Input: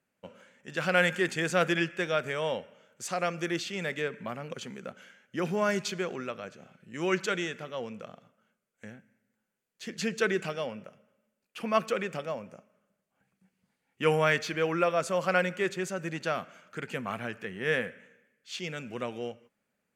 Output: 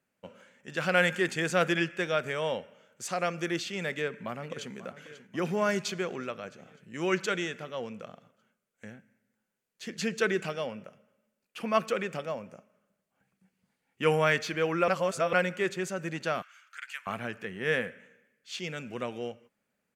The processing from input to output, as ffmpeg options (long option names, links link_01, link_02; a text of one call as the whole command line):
ffmpeg -i in.wav -filter_complex "[0:a]asplit=2[link_01][link_02];[link_02]afade=type=in:start_time=3.88:duration=0.01,afade=type=out:start_time=4.73:duration=0.01,aecho=0:1:540|1080|1620|2160|2700|3240|3780:0.177828|0.115588|0.0751323|0.048836|0.0317434|0.0206332|0.0134116[link_03];[link_01][link_03]amix=inputs=2:normalize=0,asettb=1/sr,asplit=3[link_04][link_05][link_06];[link_04]atrim=end=16.424[link_07];[link_05]atrim=start=16.42:end=17.07,asetpts=PTS-STARTPTS,afade=type=in:duration=0.004:curve=qsin,afade=type=out:start_time=0.646:duration=0.004:curve=qsin,highpass=frequency=1300:width=0.5412,highpass=frequency=1300:width=1.3066[link_08];[link_06]atrim=start=17.066[link_09];[link_07][link_08]acrossfade=duration=0.004:curve1=hsin:curve2=qsin[link_10];[link_10][link_09]acrossfade=duration=0.004:curve1=qsin:curve2=hsin,asplit=3[link_11][link_12][link_13];[link_11]atrim=end=14.882[link_14];[link_12]atrim=start=14.878:end=15.332,asetpts=PTS-STARTPTS,areverse[link_15];[link_13]atrim=start=15.328[link_16];[link_14][link_15]acrossfade=duration=0.004:curve1=hsin:curve2=hsin[link_17];[link_17][link_16]acrossfade=duration=0.004:curve1=hsin:curve2=hsin" out.wav